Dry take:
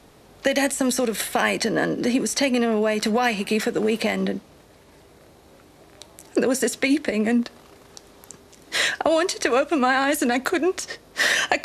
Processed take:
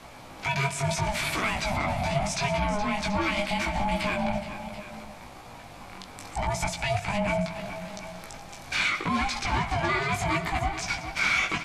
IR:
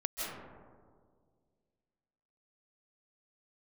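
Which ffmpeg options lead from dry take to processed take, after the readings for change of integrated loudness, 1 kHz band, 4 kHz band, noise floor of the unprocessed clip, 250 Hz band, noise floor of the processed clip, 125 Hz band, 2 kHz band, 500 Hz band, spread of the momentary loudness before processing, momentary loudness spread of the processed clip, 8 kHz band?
−5.5 dB, −1.5 dB, −5.0 dB, −52 dBFS, −10.0 dB, −45 dBFS, +6.5 dB, −3.5 dB, −9.5 dB, 6 LU, 16 LU, −8.0 dB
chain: -filter_complex "[0:a]bandreject=frequency=60:width_type=h:width=6,bandreject=frequency=120:width_type=h:width=6,bandreject=frequency=180:width_type=h:width=6,bandreject=frequency=240:width_type=h:width=6,acrossover=split=110[link_01][link_02];[link_02]aeval=exprs='0.631*sin(PI/2*2.51*val(0)/0.631)':channel_layout=same[link_03];[link_01][link_03]amix=inputs=2:normalize=0,acrossover=split=6800[link_04][link_05];[link_05]acompressor=threshold=-29dB:ratio=4:attack=1:release=60[link_06];[link_04][link_06]amix=inputs=2:normalize=0,highshelf=frequency=12000:gain=-9,acompressor=threshold=-16dB:ratio=6,alimiter=limit=-15.5dB:level=0:latency=1:release=68,aeval=exprs='val(0)*sin(2*PI*410*n/s)':channel_layout=same,flanger=delay=16:depth=5.5:speed=0.75,equalizer=frequency=2300:width=7.6:gain=9,asplit=2[link_07][link_08];[link_08]aecho=0:1:115|185|421|733:0.126|0.15|0.251|0.178[link_09];[link_07][link_09]amix=inputs=2:normalize=0"

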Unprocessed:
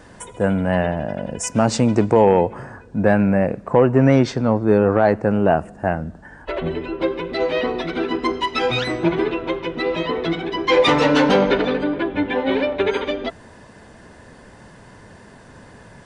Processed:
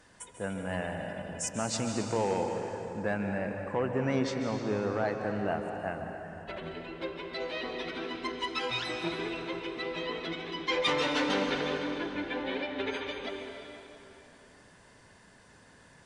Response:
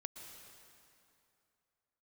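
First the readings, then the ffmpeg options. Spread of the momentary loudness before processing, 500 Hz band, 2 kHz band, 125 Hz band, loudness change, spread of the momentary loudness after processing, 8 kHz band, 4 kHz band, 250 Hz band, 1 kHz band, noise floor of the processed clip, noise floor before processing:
11 LU, −15.0 dB, −10.0 dB, −16.0 dB, −14.0 dB, 11 LU, can't be measured, −8.0 dB, −15.0 dB, −13.0 dB, −58 dBFS, −45 dBFS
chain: -filter_complex "[0:a]tiltshelf=frequency=1300:gain=-5[link_01];[1:a]atrim=start_sample=2205,asetrate=37044,aresample=44100[link_02];[link_01][link_02]afir=irnorm=-1:irlink=0,volume=-9dB"

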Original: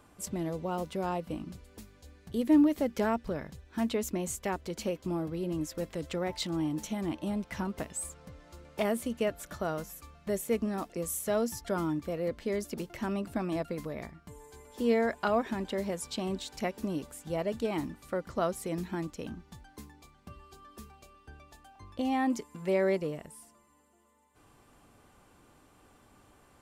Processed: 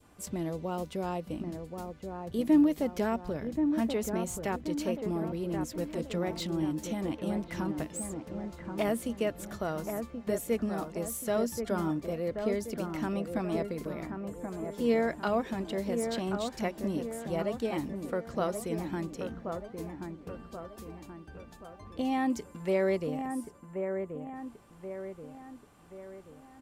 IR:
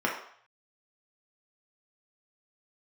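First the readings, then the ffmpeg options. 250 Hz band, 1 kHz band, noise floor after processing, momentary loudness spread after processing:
+1.0 dB, 0.0 dB, −53 dBFS, 15 LU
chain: -filter_complex "[0:a]adynamicequalizer=threshold=0.00501:dfrequency=1200:dqfactor=0.82:tfrequency=1200:tqfactor=0.82:attack=5:release=100:ratio=0.375:range=2:mode=cutabove:tftype=bell,acrossover=split=2200[link_01][link_02];[link_01]aecho=1:1:1080|2160|3240|4320|5400|6480:0.501|0.236|0.111|0.052|0.0245|0.0115[link_03];[link_02]asoftclip=type=tanh:threshold=-33dB[link_04];[link_03][link_04]amix=inputs=2:normalize=0"

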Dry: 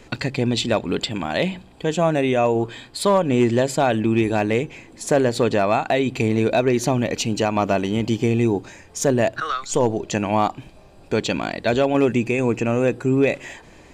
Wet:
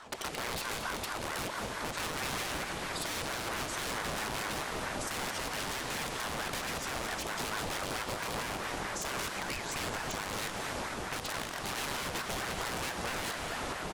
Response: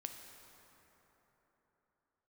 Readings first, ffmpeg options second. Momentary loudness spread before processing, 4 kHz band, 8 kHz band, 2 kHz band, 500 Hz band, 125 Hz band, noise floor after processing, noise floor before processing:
6 LU, −6.0 dB, −5.5 dB, −7.0 dB, −20.5 dB, −19.5 dB, −40 dBFS, −47 dBFS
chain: -filter_complex "[0:a]aeval=exprs='(mod(7.08*val(0)+1,2)-1)/7.08':channel_layout=same[link_01];[1:a]atrim=start_sample=2205,asetrate=24255,aresample=44100[link_02];[link_01][link_02]afir=irnorm=-1:irlink=0,acompressor=threshold=-26dB:ratio=6,aecho=1:1:222:0.237,alimiter=limit=-23.5dB:level=0:latency=1:release=439,aeval=exprs='val(0)*sin(2*PI*800*n/s+800*0.65/4.5*sin(2*PI*4.5*n/s))':channel_layout=same"

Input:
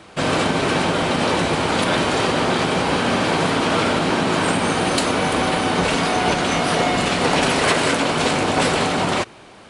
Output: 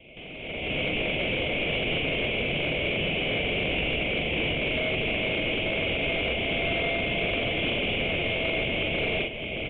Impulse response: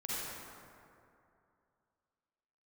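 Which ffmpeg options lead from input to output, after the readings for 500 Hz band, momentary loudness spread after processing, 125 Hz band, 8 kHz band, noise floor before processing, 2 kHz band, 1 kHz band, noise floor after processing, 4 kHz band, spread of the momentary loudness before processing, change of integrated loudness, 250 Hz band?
−8.5 dB, 1 LU, −8.5 dB, below −40 dB, −44 dBFS, −4.5 dB, −18.5 dB, −36 dBFS, −5.5 dB, 2 LU, −7.5 dB, −11.5 dB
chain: -filter_complex "[0:a]acompressor=threshold=-31dB:ratio=16,asuperpass=centerf=1200:order=12:qfactor=0.96,asplit=2[link_01][link_02];[link_02]adelay=43,volume=-3dB[link_03];[link_01][link_03]amix=inputs=2:normalize=0,aeval=exprs='val(0)*sin(2*PI*1400*n/s)':channel_layout=same,aresample=8000,asoftclip=type=tanh:threshold=-38dB,aresample=44100,aecho=1:1:617:0.376,dynaudnorm=framelen=370:gausssize=3:maxgain=16.5dB" -ar 8000 -c:a pcm_alaw

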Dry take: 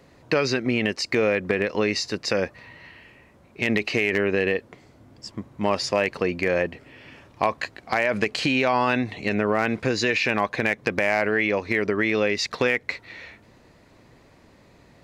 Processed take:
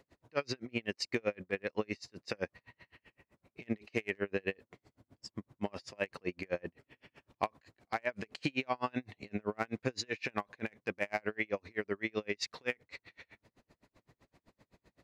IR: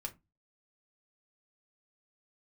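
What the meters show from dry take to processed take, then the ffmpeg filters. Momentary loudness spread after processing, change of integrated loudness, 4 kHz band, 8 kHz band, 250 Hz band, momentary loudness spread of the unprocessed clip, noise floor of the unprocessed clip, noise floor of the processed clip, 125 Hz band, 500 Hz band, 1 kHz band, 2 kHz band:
9 LU, −14.5 dB, −14.0 dB, −14.0 dB, −14.0 dB, 7 LU, −54 dBFS, below −85 dBFS, −13.5 dB, −14.5 dB, −14.0 dB, −15.5 dB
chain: -af "aeval=exprs='val(0)*pow(10,-38*(0.5-0.5*cos(2*PI*7.8*n/s))/20)':channel_layout=same,volume=-7.5dB"

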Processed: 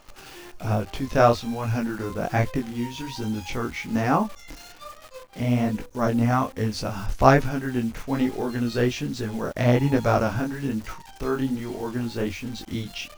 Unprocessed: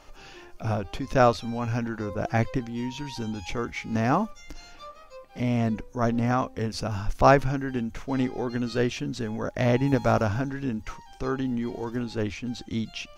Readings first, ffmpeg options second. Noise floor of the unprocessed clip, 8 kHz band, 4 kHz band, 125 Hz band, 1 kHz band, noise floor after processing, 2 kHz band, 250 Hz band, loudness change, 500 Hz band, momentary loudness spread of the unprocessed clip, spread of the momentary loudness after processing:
−49 dBFS, +3.5 dB, +2.5 dB, +2.5 dB, +1.5 dB, −46 dBFS, +2.0 dB, +2.5 dB, +2.0 dB, +2.0 dB, 13 LU, 14 LU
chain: -af "flanger=delay=18.5:depth=7.6:speed=1.2,acrusher=bits=9:dc=4:mix=0:aa=0.000001,volume=5dB"

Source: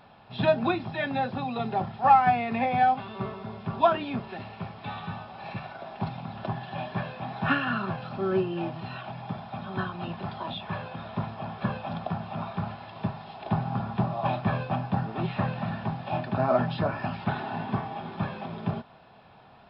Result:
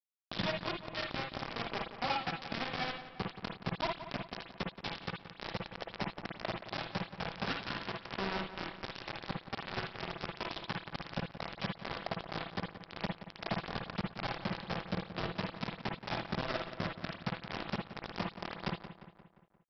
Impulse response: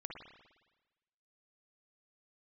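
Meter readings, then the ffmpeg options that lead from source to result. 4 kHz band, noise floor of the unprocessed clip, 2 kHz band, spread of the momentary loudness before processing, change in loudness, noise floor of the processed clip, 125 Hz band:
+1.5 dB, −53 dBFS, −5.0 dB, 13 LU, −10.0 dB, −60 dBFS, −11.5 dB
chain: -filter_complex "[0:a]adynamicequalizer=threshold=0.00891:dfrequency=980:dqfactor=1.2:tfrequency=980:tqfactor=1.2:attack=5:release=100:ratio=0.375:range=2.5:mode=cutabove:tftype=bell,acompressor=threshold=-40dB:ratio=6,aresample=11025,acrusher=bits=5:mix=0:aa=0.000001,aresample=44100,asplit=2[link_01][link_02];[link_02]adelay=175,lowpass=frequency=3200:poles=1,volume=-11.5dB,asplit=2[link_03][link_04];[link_04]adelay=175,lowpass=frequency=3200:poles=1,volume=0.55,asplit=2[link_05][link_06];[link_06]adelay=175,lowpass=frequency=3200:poles=1,volume=0.55,asplit=2[link_07][link_08];[link_08]adelay=175,lowpass=frequency=3200:poles=1,volume=0.55,asplit=2[link_09][link_10];[link_10]adelay=175,lowpass=frequency=3200:poles=1,volume=0.55,asplit=2[link_11][link_12];[link_12]adelay=175,lowpass=frequency=3200:poles=1,volume=0.55[link_13];[link_01][link_03][link_05][link_07][link_09][link_11][link_13]amix=inputs=7:normalize=0[link_14];[1:a]atrim=start_sample=2205,atrim=end_sample=3969[link_15];[link_14][link_15]afir=irnorm=-1:irlink=0,volume=8.5dB"

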